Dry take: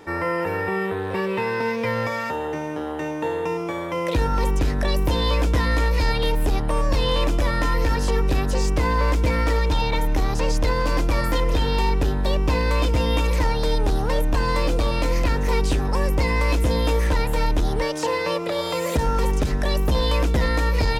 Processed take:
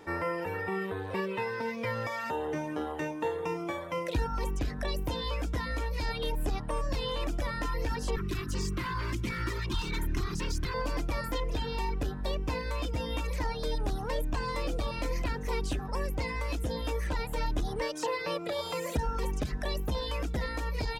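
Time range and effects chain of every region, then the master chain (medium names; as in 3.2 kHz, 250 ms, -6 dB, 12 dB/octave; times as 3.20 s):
8.16–10.74 s: comb filter that takes the minimum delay 5.7 ms + high-order bell 650 Hz -14 dB 1.1 oct
whole clip: gain riding 0.5 s; reverb removal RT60 1.1 s; trim -8 dB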